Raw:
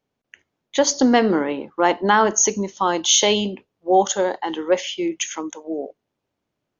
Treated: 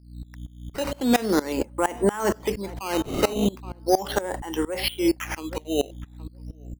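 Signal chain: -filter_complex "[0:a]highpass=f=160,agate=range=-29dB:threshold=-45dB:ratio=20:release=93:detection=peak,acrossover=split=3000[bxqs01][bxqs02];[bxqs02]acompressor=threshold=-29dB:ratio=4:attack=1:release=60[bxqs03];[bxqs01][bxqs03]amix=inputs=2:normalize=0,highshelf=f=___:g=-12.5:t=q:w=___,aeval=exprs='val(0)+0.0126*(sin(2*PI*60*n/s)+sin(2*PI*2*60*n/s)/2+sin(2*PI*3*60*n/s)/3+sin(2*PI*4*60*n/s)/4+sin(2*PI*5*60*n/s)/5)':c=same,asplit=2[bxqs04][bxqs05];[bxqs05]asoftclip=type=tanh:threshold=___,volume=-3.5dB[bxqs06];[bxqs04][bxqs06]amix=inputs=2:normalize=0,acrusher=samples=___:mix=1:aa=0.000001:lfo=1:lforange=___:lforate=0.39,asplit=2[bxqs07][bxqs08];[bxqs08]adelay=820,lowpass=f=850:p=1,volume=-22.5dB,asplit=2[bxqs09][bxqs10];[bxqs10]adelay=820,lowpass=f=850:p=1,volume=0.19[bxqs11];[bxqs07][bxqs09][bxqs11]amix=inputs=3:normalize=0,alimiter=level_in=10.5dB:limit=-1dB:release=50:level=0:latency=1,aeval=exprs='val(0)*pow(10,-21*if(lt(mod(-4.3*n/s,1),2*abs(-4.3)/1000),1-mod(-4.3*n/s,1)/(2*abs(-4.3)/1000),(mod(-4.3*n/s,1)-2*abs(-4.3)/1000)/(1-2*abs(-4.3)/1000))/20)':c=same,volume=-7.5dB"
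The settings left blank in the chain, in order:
4.2k, 1.5, -11.5dB, 9, 9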